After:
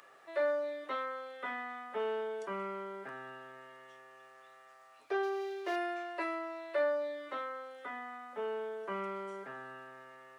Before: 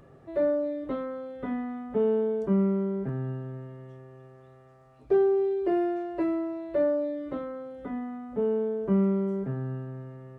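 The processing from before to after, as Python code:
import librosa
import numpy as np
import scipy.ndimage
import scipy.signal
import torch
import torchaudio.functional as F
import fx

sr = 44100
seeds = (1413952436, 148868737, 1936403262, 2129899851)

y = fx.median_filter(x, sr, points=15, at=(5.23, 5.76))
y = scipy.signal.sosfilt(scipy.signal.butter(2, 1300.0, 'highpass', fs=sr, output='sos'), y)
y = y * librosa.db_to_amplitude(8.0)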